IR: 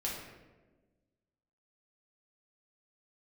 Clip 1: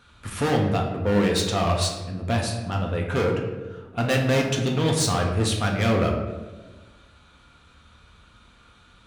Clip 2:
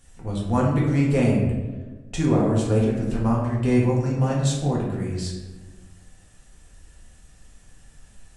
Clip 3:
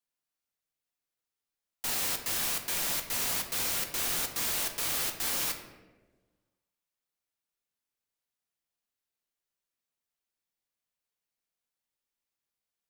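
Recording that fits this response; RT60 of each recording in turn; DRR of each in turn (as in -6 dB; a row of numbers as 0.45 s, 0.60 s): 2; 1.3 s, 1.3 s, 1.3 s; 0.0 dB, -5.0 dB, 4.0 dB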